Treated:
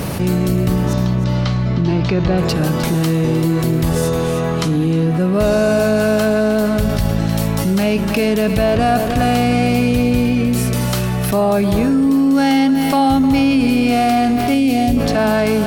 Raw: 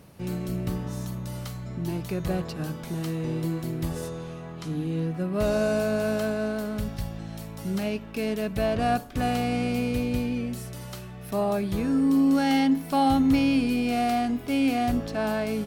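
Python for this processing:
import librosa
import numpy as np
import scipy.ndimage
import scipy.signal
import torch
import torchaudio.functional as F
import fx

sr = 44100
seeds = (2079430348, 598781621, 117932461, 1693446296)

y = fx.lowpass(x, sr, hz=4900.0, slope=24, at=(0.93, 2.38))
y = fx.peak_eq(y, sr, hz=1300.0, db=-15.0, octaves=1.1, at=(14.54, 14.97))
y = fx.echo_thinned(y, sr, ms=308, feedback_pct=23, hz=160.0, wet_db=-12)
y = fx.env_flatten(y, sr, amount_pct=70)
y = y * librosa.db_to_amplitude(6.0)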